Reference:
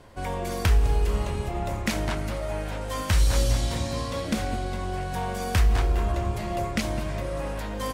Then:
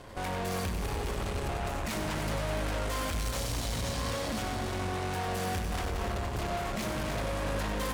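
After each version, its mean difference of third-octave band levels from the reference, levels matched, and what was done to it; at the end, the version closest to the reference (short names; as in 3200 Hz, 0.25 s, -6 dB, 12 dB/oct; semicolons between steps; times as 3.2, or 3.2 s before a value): 4.5 dB: notches 50/100/150/200/250/300/350 Hz; limiter -22.5 dBFS, peak gain reduction 10.5 dB; tube stage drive 41 dB, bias 0.8; multi-head echo 97 ms, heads first and third, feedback 49%, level -8.5 dB; gain +8.5 dB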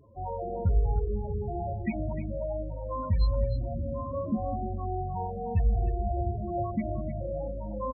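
20.0 dB: HPF 62 Hz 6 dB/oct; loudest bins only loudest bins 8; notches 60/120/180/240/300/360/420/480/540 Hz; on a send: echo 0.305 s -11 dB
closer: first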